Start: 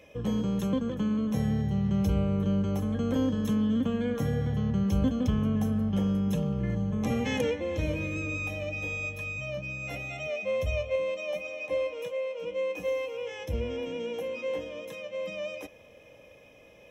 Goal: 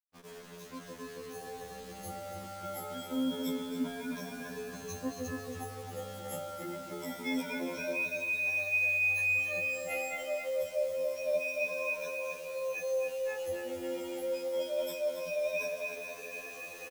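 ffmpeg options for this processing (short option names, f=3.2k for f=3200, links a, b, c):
-filter_complex "[0:a]afftfilt=real='re*pow(10,22/40*sin(2*PI*(1.6*log(max(b,1)*sr/1024/100)/log(2)-(0.26)*(pts-256)/sr)))':imag='im*pow(10,22/40*sin(2*PI*(1.6*log(max(b,1)*sr/1024/100)/log(2)-(0.26)*(pts-256)/sr)))':win_size=1024:overlap=0.75,highpass=300,areverse,acompressor=threshold=-42dB:ratio=5,areverse,highshelf=f=5.8k:g=6.5,asplit=2[a][b];[b]adelay=275,lowpass=f=3.7k:p=1,volume=-4dB,asplit=2[c][d];[d]adelay=275,lowpass=f=3.7k:p=1,volume=0.35,asplit=2[e][f];[f]adelay=275,lowpass=f=3.7k:p=1,volume=0.35,asplit=2[g][h];[h]adelay=275,lowpass=f=3.7k:p=1,volume=0.35[i];[c][e][g][i]amix=inputs=4:normalize=0[j];[a][j]amix=inputs=2:normalize=0,dynaudnorm=f=580:g=5:m=12.5dB,bandreject=f=3k:w=5.6,aeval=exprs='0.133*(cos(1*acos(clip(val(0)/0.133,-1,1)))-cos(1*PI/2))+0.00106*(cos(2*acos(clip(val(0)/0.133,-1,1)))-cos(2*PI/2))':c=same,acrusher=bits=6:mix=0:aa=0.000001,afftfilt=real='re*2*eq(mod(b,4),0)':imag='im*2*eq(mod(b,4),0)':win_size=2048:overlap=0.75,volume=-5.5dB"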